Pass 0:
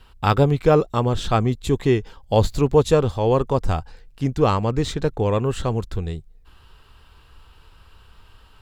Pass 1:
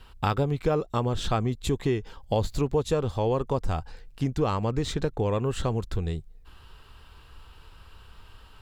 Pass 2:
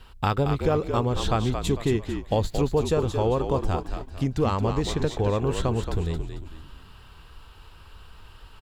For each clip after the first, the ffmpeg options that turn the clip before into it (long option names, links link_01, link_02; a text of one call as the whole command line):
ffmpeg -i in.wav -af "acompressor=threshold=-24dB:ratio=3" out.wav
ffmpeg -i in.wav -filter_complex "[0:a]asplit=6[link_01][link_02][link_03][link_04][link_05][link_06];[link_02]adelay=224,afreqshift=-49,volume=-7dB[link_07];[link_03]adelay=448,afreqshift=-98,volume=-15.2dB[link_08];[link_04]adelay=672,afreqshift=-147,volume=-23.4dB[link_09];[link_05]adelay=896,afreqshift=-196,volume=-31.5dB[link_10];[link_06]adelay=1120,afreqshift=-245,volume=-39.7dB[link_11];[link_01][link_07][link_08][link_09][link_10][link_11]amix=inputs=6:normalize=0,volume=1.5dB" out.wav